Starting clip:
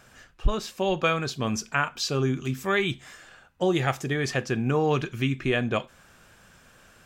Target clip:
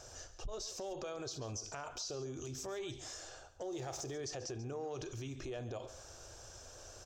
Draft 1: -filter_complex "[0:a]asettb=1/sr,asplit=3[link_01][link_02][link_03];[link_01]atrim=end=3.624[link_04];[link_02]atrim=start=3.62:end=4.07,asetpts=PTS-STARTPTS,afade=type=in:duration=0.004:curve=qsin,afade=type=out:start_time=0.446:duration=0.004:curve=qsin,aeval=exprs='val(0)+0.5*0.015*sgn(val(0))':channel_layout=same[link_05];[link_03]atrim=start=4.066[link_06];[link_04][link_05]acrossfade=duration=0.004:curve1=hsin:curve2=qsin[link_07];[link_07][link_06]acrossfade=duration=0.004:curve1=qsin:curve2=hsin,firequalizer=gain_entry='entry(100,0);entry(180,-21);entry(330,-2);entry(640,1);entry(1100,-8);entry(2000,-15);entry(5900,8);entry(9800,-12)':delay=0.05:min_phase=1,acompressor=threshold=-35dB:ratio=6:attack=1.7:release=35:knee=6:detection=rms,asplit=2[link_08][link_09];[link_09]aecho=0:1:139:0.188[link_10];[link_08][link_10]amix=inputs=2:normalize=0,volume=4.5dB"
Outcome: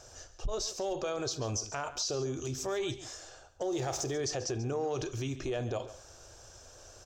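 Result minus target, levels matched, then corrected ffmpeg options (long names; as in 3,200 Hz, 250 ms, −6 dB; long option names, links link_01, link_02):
downward compressor: peak gain reduction −8.5 dB
-filter_complex "[0:a]asettb=1/sr,asplit=3[link_01][link_02][link_03];[link_01]atrim=end=3.624[link_04];[link_02]atrim=start=3.62:end=4.07,asetpts=PTS-STARTPTS,afade=type=in:duration=0.004:curve=qsin,afade=type=out:start_time=0.446:duration=0.004:curve=qsin,aeval=exprs='val(0)+0.5*0.015*sgn(val(0))':channel_layout=same[link_05];[link_03]atrim=start=4.066[link_06];[link_04][link_05]acrossfade=duration=0.004:curve1=hsin:curve2=qsin[link_07];[link_07][link_06]acrossfade=duration=0.004:curve1=qsin:curve2=hsin,firequalizer=gain_entry='entry(100,0);entry(180,-21);entry(330,-2);entry(640,1);entry(1100,-8);entry(2000,-15);entry(5900,8);entry(9800,-12)':delay=0.05:min_phase=1,acompressor=threshold=-45.5dB:ratio=6:attack=1.7:release=35:knee=6:detection=rms,asplit=2[link_08][link_09];[link_09]aecho=0:1:139:0.188[link_10];[link_08][link_10]amix=inputs=2:normalize=0,volume=4.5dB"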